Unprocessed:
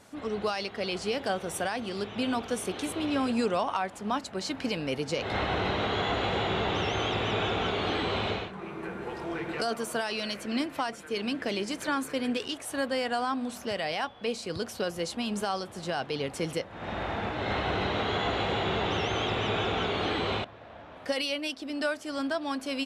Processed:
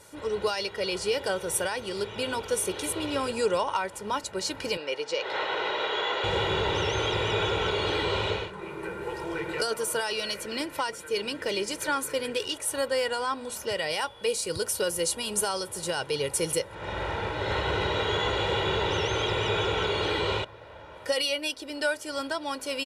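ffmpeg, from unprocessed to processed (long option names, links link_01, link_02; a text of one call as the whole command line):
ffmpeg -i in.wav -filter_complex "[0:a]asettb=1/sr,asplit=3[link_01][link_02][link_03];[link_01]atrim=end=4.774[link_04];[link_02]atrim=start=4.77:end=6.24,asetpts=PTS-STARTPTS,afade=type=in:duration=0.004:curve=qsin,afade=type=out:start_time=1.466:duration=0.004:curve=qsin,highpass=460,lowpass=4900[link_05];[link_03]atrim=start=6.236[link_06];[link_04][link_05]acrossfade=duration=0.004:curve1=hsin:curve2=qsin[link_07];[link_07][link_06]acrossfade=duration=0.004:curve1=qsin:curve2=hsin,asettb=1/sr,asplit=3[link_08][link_09][link_10];[link_08]atrim=end=13.904[link_11];[link_09]atrim=start=13.9:end=16.75,asetpts=PTS-STARTPTS,afade=type=in:duration=0.004:curve=qsin,afade=type=out:start_time=2.846:duration=0.004:curve=qsin,equalizer=frequency=10000:width_type=o:width=0.89:gain=10[link_12];[link_10]atrim=start=16.746[link_13];[link_11][link_12]acrossfade=duration=0.004:curve1=hsin:curve2=qsin[link_14];[link_14][link_13]acrossfade=duration=0.004:curve1=qsin:curve2=hsin,equalizer=frequency=11000:width_type=o:width=1.3:gain=8.5,aecho=1:1:2.1:0.69" out.wav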